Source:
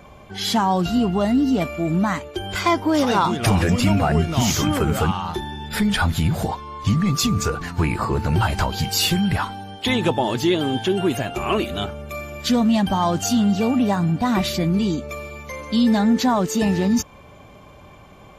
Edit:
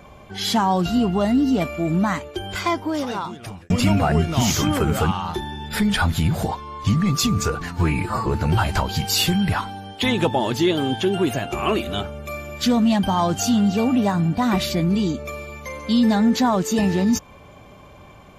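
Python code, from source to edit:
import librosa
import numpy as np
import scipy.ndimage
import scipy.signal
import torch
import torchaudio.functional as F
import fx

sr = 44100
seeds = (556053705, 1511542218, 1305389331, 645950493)

y = fx.edit(x, sr, fx.fade_out_span(start_s=2.23, length_s=1.47),
    fx.stretch_span(start_s=7.77, length_s=0.33, factor=1.5), tone=tone)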